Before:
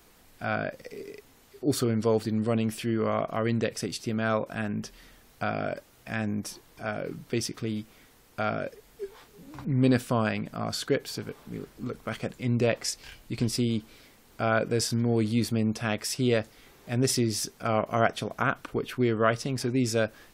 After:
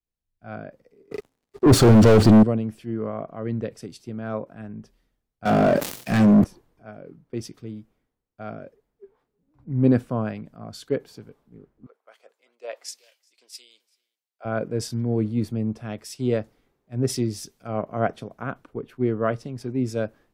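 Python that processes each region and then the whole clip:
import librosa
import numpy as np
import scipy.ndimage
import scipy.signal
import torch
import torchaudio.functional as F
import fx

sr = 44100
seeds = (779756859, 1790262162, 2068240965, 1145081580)

y = fx.chain(x, sr, fx.lowpass(hz=9400.0, slope=12),
    fx.leveller(passes=5),
    fx.clip_hard(threshold_db=-17.0), at=(1.11, 2.43))
y = fx.chain(y, sr, fx.highpass(hz=110.0, slope=24),
    fx.leveller(passes=5),
    fx.sustainer(db_per_s=70.0), at=(5.45, 6.44))
y = fx.chain(y, sr, fx.highpass(hz=540.0, slope=24),
    fx.echo_single(ms=387, db=-15.5), at=(11.86, 14.45))
y = fx.tilt_shelf(y, sr, db=6.5, hz=1200.0)
y = fx.band_widen(y, sr, depth_pct=100)
y = y * 10.0 ** (-5.5 / 20.0)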